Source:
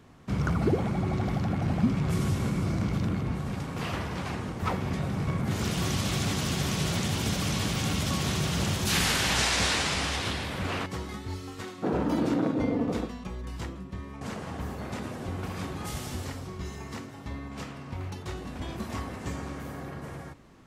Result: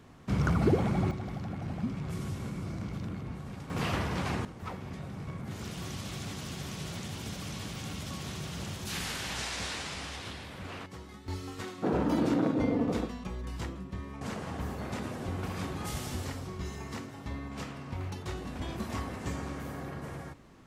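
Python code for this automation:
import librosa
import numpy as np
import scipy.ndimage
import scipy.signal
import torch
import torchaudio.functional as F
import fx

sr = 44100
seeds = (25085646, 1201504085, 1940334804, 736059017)

y = fx.gain(x, sr, db=fx.steps((0.0, 0.0), (1.11, -9.0), (3.7, 1.0), (4.45, -10.5), (11.28, -1.0)))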